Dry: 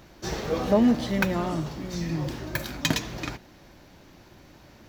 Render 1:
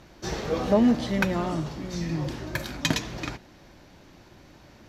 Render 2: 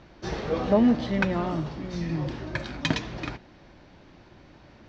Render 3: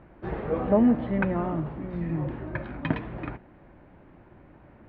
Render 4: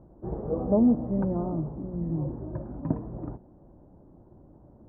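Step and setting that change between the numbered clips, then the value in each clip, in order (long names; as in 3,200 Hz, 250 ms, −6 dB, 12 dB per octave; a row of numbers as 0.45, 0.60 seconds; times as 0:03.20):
Bessel low-pass filter, frequency: 11,000, 3,800, 1,500, 580 Hertz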